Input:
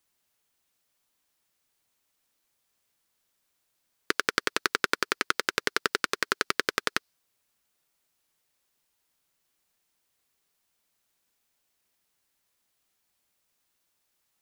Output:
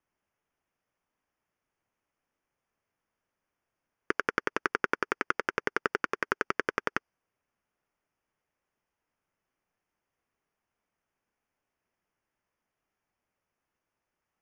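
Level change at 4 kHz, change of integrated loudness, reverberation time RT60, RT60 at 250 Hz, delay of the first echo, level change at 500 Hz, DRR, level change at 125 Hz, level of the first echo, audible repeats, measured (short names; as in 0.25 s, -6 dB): -14.5 dB, -3.5 dB, none, none, none, 0.0 dB, none, 0.0 dB, none, none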